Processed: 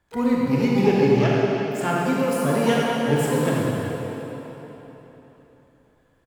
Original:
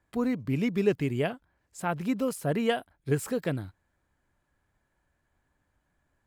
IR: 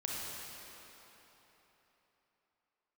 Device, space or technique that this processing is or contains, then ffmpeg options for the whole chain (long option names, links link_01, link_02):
shimmer-style reverb: -filter_complex "[0:a]asettb=1/sr,asplit=3[link_01][link_02][link_03];[link_01]atrim=end=0.834[link_04];[link_02]atrim=start=0.83:end=1.32,asetpts=PTS-STARTPTS,afade=type=in:duration=0.004:curve=qsin,afade=type=out:start_time=0.486:duration=0.004:curve=qsin,lowpass=frequency=6400:width=0.5412,lowpass=frequency=6400:width=1.3066[link_05];[link_03]atrim=start=1.316[link_06];[link_04][link_05]acrossfade=duration=0.004:curve1=hsin:curve2=qsin[link_07];[link_07][link_06]acrossfade=duration=0.004:curve1=qsin:curve2=hsin,asplit=2[link_08][link_09];[link_09]adelay=125,lowpass=frequency=3200:poles=1,volume=-16dB,asplit=2[link_10][link_11];[link_11]adelay=125,lowpass=frequency=3200:poles=1,volume=0.16[link_12];[link_08][link_10][link_12]amix=inputs=3:normalize=0,asplit=2[link_13][link_14];[link_14]asetrate=88200,aresample=44100,atempo=0.5,volume=-10dB[link_15];[link_13][link_15]amix=inputs=2:normalize=0[link_16];[1:a]atrim=start_sample=2205[link_17];[link_16][link_17]afir=irnorm=-1:irlink=0,volume=5dB"